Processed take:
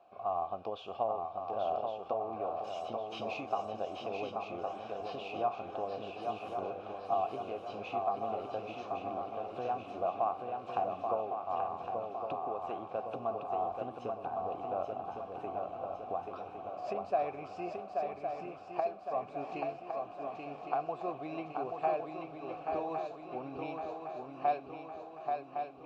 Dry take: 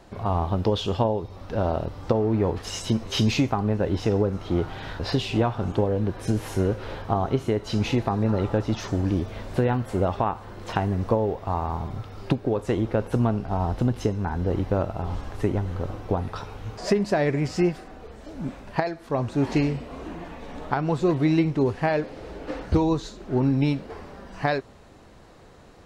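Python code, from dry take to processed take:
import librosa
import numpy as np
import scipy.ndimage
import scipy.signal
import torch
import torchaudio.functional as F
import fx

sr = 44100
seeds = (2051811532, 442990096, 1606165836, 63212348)

y = fx.vowel_filter(x, sr, vowel='a')
y = fx.echo_swing(y, sr, ms=1110, ratio=3, feedback_pct=53, wet_db=-4.5)
y = y * 10.0 ** (-1.0 / 20.0)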